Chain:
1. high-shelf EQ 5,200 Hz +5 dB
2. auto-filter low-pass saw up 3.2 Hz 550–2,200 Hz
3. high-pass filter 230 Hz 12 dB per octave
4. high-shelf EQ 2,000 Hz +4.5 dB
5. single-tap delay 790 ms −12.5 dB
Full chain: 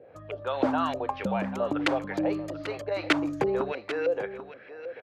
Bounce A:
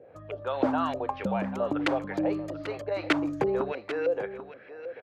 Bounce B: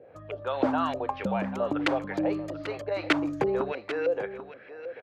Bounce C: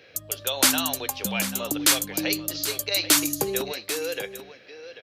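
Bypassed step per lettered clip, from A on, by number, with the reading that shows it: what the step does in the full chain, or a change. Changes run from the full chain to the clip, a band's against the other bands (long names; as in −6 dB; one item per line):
4, 4 kHz band −3.0 dB
1, 8 kHz band −3.0 dB
2, 8 kHz band +29.5 dB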